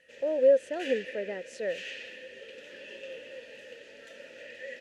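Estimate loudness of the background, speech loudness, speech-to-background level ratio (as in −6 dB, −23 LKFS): −43.5 LKFS, −28.5 LKFS, 15.0 dB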